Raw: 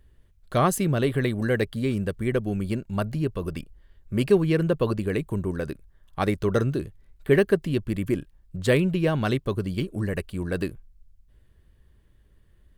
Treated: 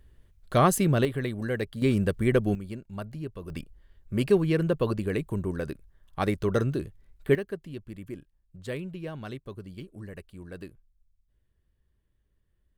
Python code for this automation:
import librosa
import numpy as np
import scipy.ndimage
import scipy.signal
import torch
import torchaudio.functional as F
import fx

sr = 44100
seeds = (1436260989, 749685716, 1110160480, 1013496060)

y = fx.gain(x, sr, db=fx.steps((0.0, 0.5), (1.05, -6.0), (1.82, 2.0), (2.55, -10.0), (3.5, -2.5), (7.35, -14.0)))